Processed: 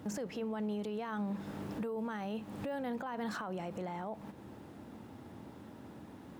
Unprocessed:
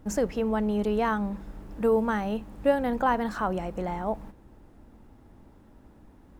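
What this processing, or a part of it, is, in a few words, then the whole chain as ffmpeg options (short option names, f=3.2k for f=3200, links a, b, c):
broadcast voice chain: -af "highpass=f=99:w=0.5412,highpass=f=99:w=1.3066,deesser=0.85,acompressor=threshold=-39dB:ratio=4,equalizer=f=3.5k:t=o:w=1.1:g=4,alimiter=level_in=12.5dB:limit=-24dB:level=0:latency=1:release=24,volume=-12.5dB,volume=5.5dB"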